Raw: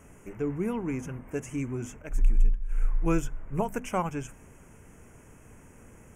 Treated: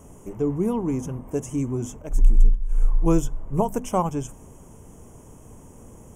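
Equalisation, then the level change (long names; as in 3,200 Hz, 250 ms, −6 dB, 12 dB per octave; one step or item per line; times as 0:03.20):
flat-topped bell 1,900 Hz −13 dB 1.2 octaves
notch filter 4,600 Hz, Q 9.3
+6.5 dB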